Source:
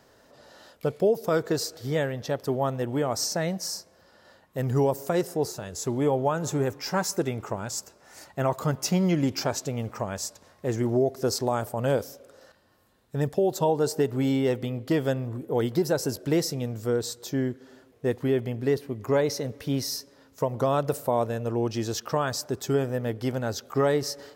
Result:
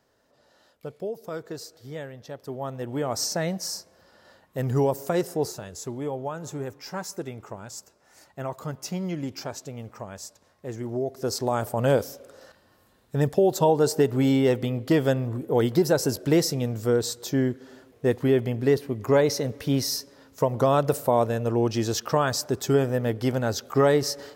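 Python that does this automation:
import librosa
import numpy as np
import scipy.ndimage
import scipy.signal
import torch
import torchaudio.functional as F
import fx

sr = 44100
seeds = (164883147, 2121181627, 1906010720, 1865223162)

y = fx.gain(x, sr, db=fx.line((2.34, -10.0), (3.19, 0.5), (5.48, 0.5), (6.0, -7.0), (10.85, -7.0), (11.74, 3.5)))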